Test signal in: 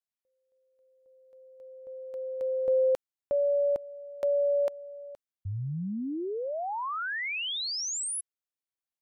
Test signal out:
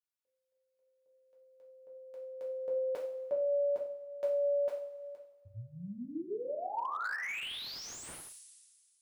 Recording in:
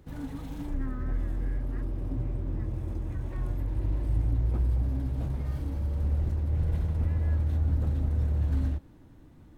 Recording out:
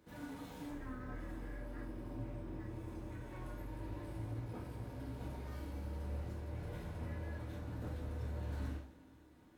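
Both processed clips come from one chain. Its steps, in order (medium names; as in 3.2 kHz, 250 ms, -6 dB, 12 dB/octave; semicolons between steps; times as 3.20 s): high-pass 370 Hz 6 dB/octave; two-slope reverb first 0.46 s, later 1.9 s, from -17 dB, DRR -4 dB; slew-rate limiter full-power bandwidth 86 Hz; trim -8 dB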